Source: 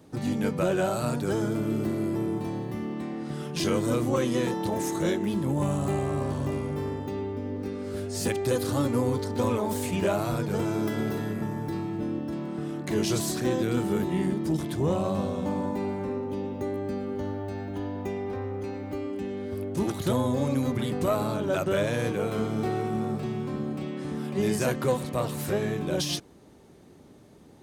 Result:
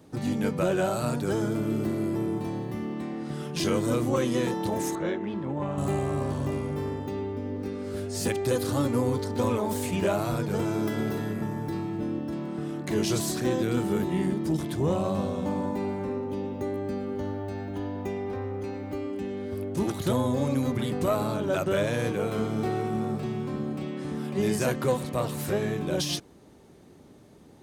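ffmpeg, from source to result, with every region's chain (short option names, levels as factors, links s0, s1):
-filter_complex "[0:a]asettb=1/sr,asplit=3[s0][s1][s2];[s0]atrim=end=4.954[s3];[s1]atrim=start=4.95:end=5.78,asetpts=PTS-STARTPTS,afade=t=in:d=0.004:c=qsin,afade=t=out:st=0.826:d=0.004:c=qsin,lowpass=2400,lowshelf=f=260:g=-8.5[s4];[s2]atrim=start=5.776[s5];[s3][s4]acrossfade=d=0.004:c1=hsin:c2=qsin[s6];[s6][s5]acrossfade=d=0.004:c1=qsin:c2=hsin"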